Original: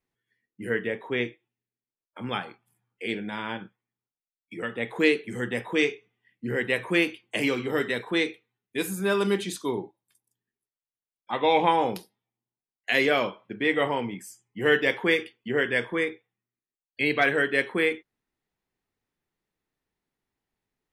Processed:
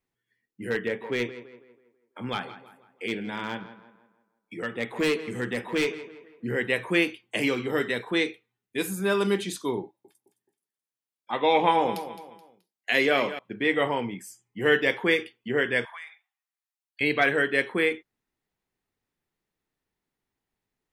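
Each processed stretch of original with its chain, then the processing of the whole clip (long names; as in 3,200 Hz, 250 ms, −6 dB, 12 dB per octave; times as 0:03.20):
0:00.70–0:06.46: gain into a clipping stage and back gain 20 dB + tape delay 165 ms, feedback 47%, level −12 dB, low-pass 2,500 Hz
0:09.83–0:13.39: high-pass filter 130 Hz + repeating echo 214 ms, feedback 35%, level −13 dB
0:15.85–0:17.01: Butterworth high-pass 680 Hz 72 dB per octave + downward compressor 4 to 1, threshold −39 dBFS
whole clip: no processing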